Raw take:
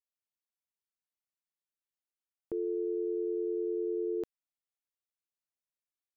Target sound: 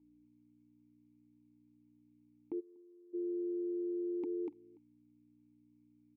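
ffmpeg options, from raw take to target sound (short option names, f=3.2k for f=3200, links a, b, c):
-filter_complex "[0:a]aeval=exprs='val(0)+0.000501*(sin(2*PI*60*n/s)+sin(2*PI*2*60*n/s)/2+sin(2*PI*3*60*n/s)/3+sin(2*PI*4*60*n/s)/4+sin(2*PI*5*60*n/s)/5)':c=same,asplit=3[a][b][c];[a]bandpass=f=300:t=q:w=8,volume=0dB[d];[b]bandpass=f=870:t=q:w=8,volume=-6dB[e];[c]bandpass=f=2.24k:t=q:w=8,volume=-9dB[f];[d][e][f]amix=inputs=3:normalize=0,asplit=2[g][h];[h]aecho=0:1:242:0.447[i];[g][i]amix=inputs=2:normalize=0,alimiter=level_in=24.5dB:limit=-24dB:level=0:latency=1:release=36,volume=-24.5dB,asplit=2[j][k];[k]aecho=0:1:290:0.0668[l];[j][l]amix=inputs=2:normalize=0,asplit=3[m][n][o];[m]afade=t=out:st=2.59:d=0.02[p];[n]agate=range=-33dB:threshold=-39dB:ratio=3:detection=peak,afade=t=in:st=2.59:d=0.02,afade=t=out:st=3.13:d=0.02[q];[o]afade=t=in:st=3.13:d=0.02[r];[p][q][r]amix=inputs=3:normalize=0,volume=16dB"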